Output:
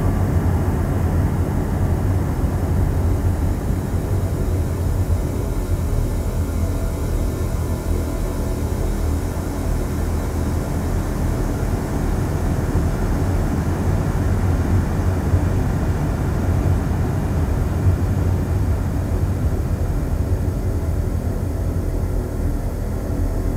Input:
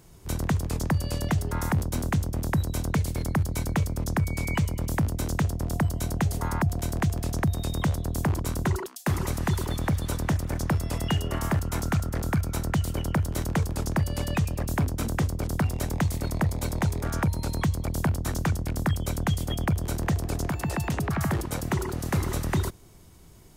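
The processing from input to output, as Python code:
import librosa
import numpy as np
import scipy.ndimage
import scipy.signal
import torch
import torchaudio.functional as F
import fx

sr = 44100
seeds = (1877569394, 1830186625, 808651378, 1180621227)

y = fx.echo_wet_bandpass(x, sr, ms=408, feedback_pct=58, hz=440.0, wet_db=-4.0)
y = fx.paulstretch(y, sr, seeds[0], factor=38.0, window_s=0.5, from_s=11.54)
y = fx.low_shelf(y, sr, hz=310.0, db=12.0)
y = y * 10.0 ** (-2.0 / 20.0)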